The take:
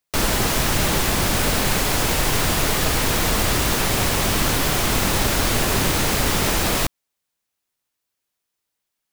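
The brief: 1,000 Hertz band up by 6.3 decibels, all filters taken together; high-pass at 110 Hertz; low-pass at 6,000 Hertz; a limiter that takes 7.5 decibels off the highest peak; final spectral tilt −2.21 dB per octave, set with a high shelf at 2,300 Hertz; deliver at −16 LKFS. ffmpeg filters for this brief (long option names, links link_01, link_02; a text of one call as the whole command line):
ffmpeg -i in.wav -af "highpass=110,lowpass=6000,equalizer=frequency=1000:width_type=o:gain=6.5,highshelf=frequency=2300:gain=7,volume=5dB,alimiter=limit=-8dB:level=0:latency=1" out.wav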